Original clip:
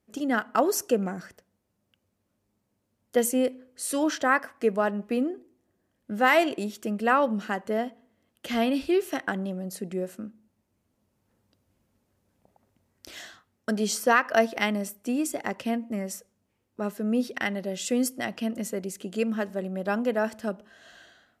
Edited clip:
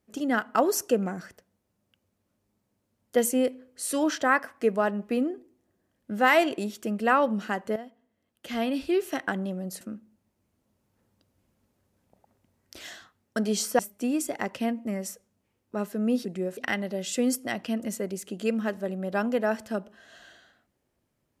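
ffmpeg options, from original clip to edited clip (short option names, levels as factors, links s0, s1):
-filter_complex "[0:a]asplit=6[s0][s1][s2][s3][s4][s5];[s0]atrim=end=7.76,asetpts=PTS-STARTPTS,afade=t=out:st=7.756:d=0.004:c=hsin:silence=0.223872[s6];[s1]atrim=start=7.76:end=9.812,asetpts=PTS-STARTPTS,afade=t=in:d=1.48:silence=0.223872[s7];[s2]atrim=start=10.128:end=14.112[s8];[s3]atrim=start=14.838:end=17.302[s9];[s4]atrim=start=9.808:end=10.132[s10];[s5]atrim=start=17.298[s11];[s6][s7]concat=n=2:v=0:a=1[s12];[s12][s8]acrossfade=d=0.004:c1=hsin:c2=hsin[s13];[s13][s9]acrossfade=d=0.004:c1=hsin:c2=hsin[s14];[s14][s10]acrossfade=d=0.004:c1=hsin:c2=hsin[s15];[s15][s11]acrossfade=d=0.004:c1=hsin:c2=hsin"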